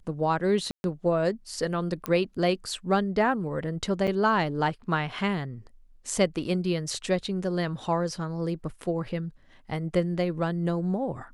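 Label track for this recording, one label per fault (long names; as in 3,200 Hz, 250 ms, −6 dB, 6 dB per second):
0.710000	0.840000	drop-out 131 ms
2.060000	2.060000	click −14 dBFS
4.070000	4.080000	drop-out 7.1 ms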